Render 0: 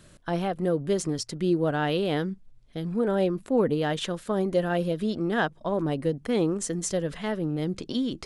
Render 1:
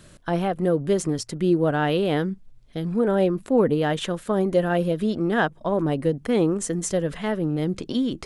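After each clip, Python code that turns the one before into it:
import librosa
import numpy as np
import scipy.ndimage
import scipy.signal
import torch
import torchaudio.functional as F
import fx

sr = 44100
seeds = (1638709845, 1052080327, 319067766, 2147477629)

y = fx.dynamic_eq(x, sr, hz=4700.0, q=1.2, threshold_db=-50.0, ratio=4.0, max_db=-5)
y = y * 10.0 ** (4.0 / 20.0)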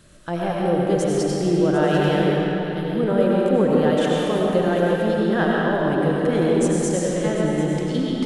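y = x + 10.0 ** (-14.0 / 20.0) * np.pad(x, (int(744 * sr / 1000.0), 0))[:len(x)]
y = fx.rev_freeverb(y, sr, rt60_s=3.1, hf_ratio=0.8, predelay_ms=55, drr_db=-4.5)
y = y * 10.0 ** (-2.5 / 20.0)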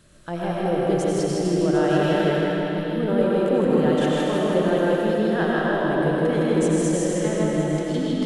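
y = fx.echo_feedback(x, sr, ms=158, feedback_pct=54, wet_db=-3)
y = y * 10.0 ** (-3.5 / 20.0)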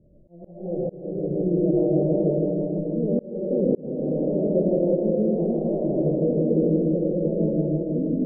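y = scipy.signal.sosfilt(scipy.signal.ellip(4, 1.0, 60, 590.0, 'lowpass', fs=sr, output='sos'), x)
y = fx.auto_swell(y, sr, attack_ms=485.0)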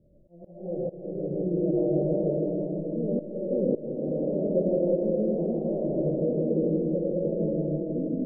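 y = fx.peak_eq(x, sr, hz=550.0, db=4.0, octaves=0.24)
y = fx.rev_freeverb(y, sr, rt60_s=4.4, hf_ratio=0.75, predelay_ms=95, drr_db=16.0)
y = y * 10.0 ** (-5.0 / 20.0)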